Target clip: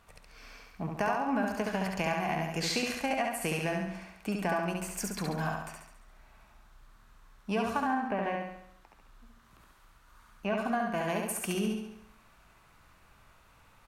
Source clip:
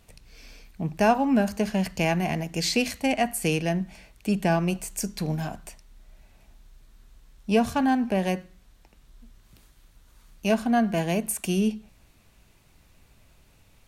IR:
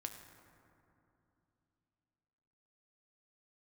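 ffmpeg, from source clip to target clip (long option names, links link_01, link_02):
-filter_complex "[0:a]asettb=1/sr,asplit=3[link_01][link_02][link_03];[link_01]atrim=end=7.834[link_04];[link_02]atrim=start=7.83:end=10.58,asetpts=PTS-STARTPTS,afade=type=in:duration=0.004:curve=qsin,afade=type=out:start_time=2.746:duration=0.004:curve=qsin,acrossover=split=3000[link_05][link_06];[link_06]acompressor=threshold=-59dB:ratio=4:attack=1:release=60[link_07];[link_05][link_07]amix=inputs=2:normalize=0[link_08];[link_03]atrim=start=10.576[link_09];[link_04][link_08]acrossfade=duration=0.004:curve1=hsin:curve2=qsin[link_10];[link_10][link_09]acrossfade=duration=0.004:curve1=qsin:curve2=hsin,equalizer=frequency=1200:width=0.98:gain=15,acompressor=threshold=-21dB:ratio=6,aecho=1:1:69|138|207|276|345|414|483:0.708|0.375|0.199|0.105|0.0559|0.0296|0.0157,volume=-7.5dB"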